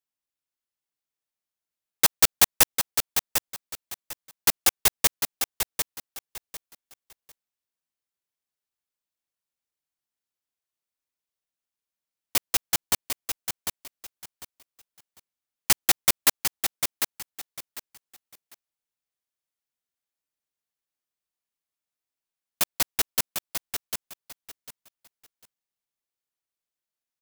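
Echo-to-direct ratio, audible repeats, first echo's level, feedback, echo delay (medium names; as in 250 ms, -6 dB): -7.0 dB, 3, -7.0 dB, 23%, 749 ms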